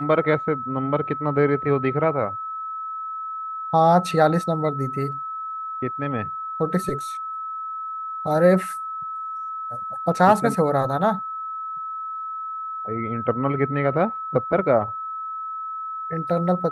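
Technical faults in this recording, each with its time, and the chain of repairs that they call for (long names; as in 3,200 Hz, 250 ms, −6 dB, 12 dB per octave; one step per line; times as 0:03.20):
whistle 1,300 Hz −28 dBFS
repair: notch filter 1,300 Hz, Q 30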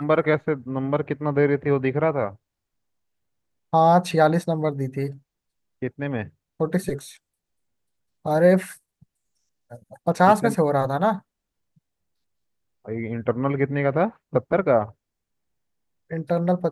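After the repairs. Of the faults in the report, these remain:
none of them is left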